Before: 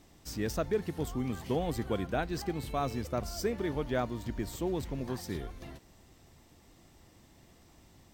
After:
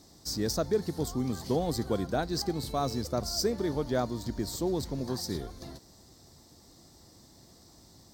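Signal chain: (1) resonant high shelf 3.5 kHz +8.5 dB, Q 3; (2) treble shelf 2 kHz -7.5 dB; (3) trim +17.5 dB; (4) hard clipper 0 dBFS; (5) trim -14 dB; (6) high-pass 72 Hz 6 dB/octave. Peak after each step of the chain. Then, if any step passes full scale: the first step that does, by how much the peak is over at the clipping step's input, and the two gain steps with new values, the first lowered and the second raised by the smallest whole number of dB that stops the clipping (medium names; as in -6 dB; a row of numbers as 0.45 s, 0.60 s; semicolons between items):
-14.5 dBFS, -20.0 dBFS, -2.5 dBFS, -2.5 dBFS, -16.5 dBFS, -16.5 dBFS; nothing clips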